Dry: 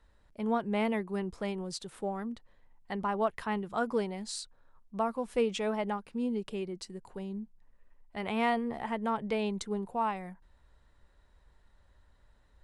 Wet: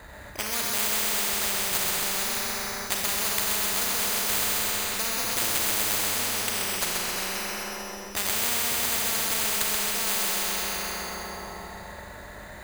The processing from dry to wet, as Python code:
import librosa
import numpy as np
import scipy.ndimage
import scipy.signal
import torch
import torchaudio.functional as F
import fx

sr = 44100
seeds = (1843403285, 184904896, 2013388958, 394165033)

p1 = fx.cycle_switch(x, sr, every=2, mode='muted', at=(5.24, 6.01))
p2 = scipy.signal.sosfilt(scipy.signal.butter(2, 59.0, 'highpass', fs=sr, output='sos'), p1)
p3 = fx.peak_eq(p2, sr, hz=4700.0, db=6.0, octaves=0.77)
p4 = np.repeat(p3[::8], 8)[:len(p3)]
p5 = fx.graphic_eq_31(p4, sr, hz=(630, 2000, 3150), db=(6, 7, -5))
p6 = p5 + fx.echo_feedback(p5, sr, ms=130, feedback_pct=47, wet_db=-5.0, dry=0)
p7 = fx.rev_schroeder(p6, sr, rt60_s=2.4, comb_ms=30, drr_db=-1.0)
p8 = fx.spectral_comp(p7, sr, ratio=10.0)
y = F.gain(torch.from_numpy(p8), 4.5).numpy()